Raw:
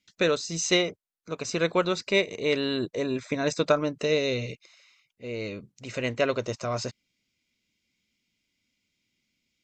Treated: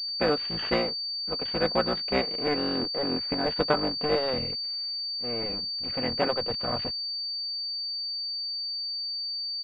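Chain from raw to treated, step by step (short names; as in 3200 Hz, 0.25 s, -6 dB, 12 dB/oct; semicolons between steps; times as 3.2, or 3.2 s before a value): cycle switcher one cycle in 3, muted; comb 4 ms, depth 32%; pulse-width modulation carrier 4600 Hz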